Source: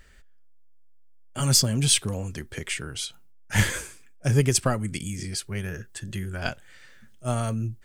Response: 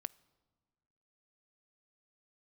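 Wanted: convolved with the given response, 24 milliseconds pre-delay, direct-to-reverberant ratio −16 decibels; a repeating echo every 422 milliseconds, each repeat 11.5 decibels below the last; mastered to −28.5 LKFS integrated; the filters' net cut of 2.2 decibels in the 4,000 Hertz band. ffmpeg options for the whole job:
-filter_complex "[0:a]equalizer=frequency=4000:width_type=o:gain=-3,aecho=1:1:422|844|1266:0.266|0.0718|0.0194,asplit=2[link_01][link_02];[1:a]atrim=start_sample=2205,adelay=24[link_03];[link_02][link_03]afir=irnorm=-1:irlink=0,volume=19dB[link_04];[link_01][link_04]amix=inputs=2:normalize=0,volume=-18dB"

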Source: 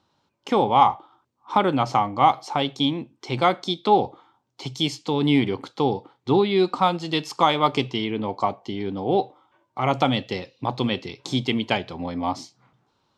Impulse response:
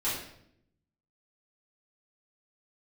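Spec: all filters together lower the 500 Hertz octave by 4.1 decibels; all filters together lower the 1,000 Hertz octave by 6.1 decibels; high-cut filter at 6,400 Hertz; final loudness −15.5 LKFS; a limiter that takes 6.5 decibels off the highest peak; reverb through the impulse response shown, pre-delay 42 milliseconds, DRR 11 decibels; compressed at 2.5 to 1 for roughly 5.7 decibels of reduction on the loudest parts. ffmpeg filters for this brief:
-filter_complex "[0:a]lowpass=6400,equalizer=frequency=500:width_type=o:gain=-4,equalizer=frequency=1000:width_type=o:gain=-6.5,acompressor=threshold=-25dB:ratio=2.5,alimiter=limit=-18dB:level=0:latency=1,asplit=2[link_01][link_02];[1:a]atrim=start_sample=2205,adelay=42[link_03];[link_02][link_03]afir=irnorm=-1:irlink=0,volume=-18.5dB[link_04];[link_01][link_04]amix=inputs=2:normalize=0,volume=16dB"

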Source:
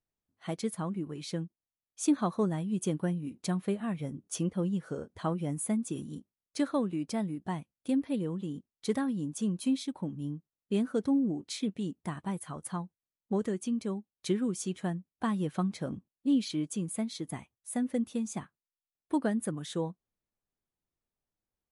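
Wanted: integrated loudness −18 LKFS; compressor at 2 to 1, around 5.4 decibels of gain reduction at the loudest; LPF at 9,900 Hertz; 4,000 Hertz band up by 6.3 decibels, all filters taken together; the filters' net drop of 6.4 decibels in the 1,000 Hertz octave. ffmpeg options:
ffmpeg -i in.wav -af "lowpass=9900,equalizer=frequency=1000:width_type=o:gain=-9,equalizer=frequency=4000:width_type=o:gain=8,acompressor=threshold=-32dB:ratio=2,volume=18.5dB" out.wav

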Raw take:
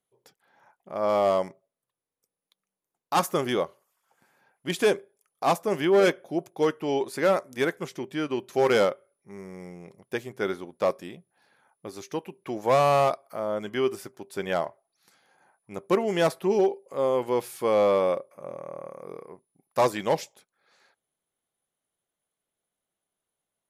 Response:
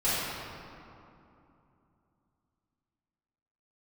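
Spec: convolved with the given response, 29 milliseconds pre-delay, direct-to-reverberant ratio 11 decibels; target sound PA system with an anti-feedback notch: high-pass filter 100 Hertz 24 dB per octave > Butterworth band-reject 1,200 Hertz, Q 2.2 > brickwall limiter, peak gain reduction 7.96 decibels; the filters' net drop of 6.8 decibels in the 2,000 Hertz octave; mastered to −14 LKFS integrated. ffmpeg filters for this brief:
-filter_complex "[0:a]equalizer=frequency=2000:width_type=o:gain=-7.5,asplit=2[link_01][link_02];[1:a]atrim=start_sample=2205,adelay=29[link_03];[link_02][link_03]afir=irnorm=-1:irlink=0,volume=-23.5dB[link_04];[link_01][link_04]amix=inputs=2:normalize=0,highpass=frequency=100:width=0.5412,highpass=frequency=100:width=1.3066,asuperstop=centerf=1200:order=8:qfactor=2.2,volume=17dB,alimiter=limit=-2.5dB:level=0:latency=1"

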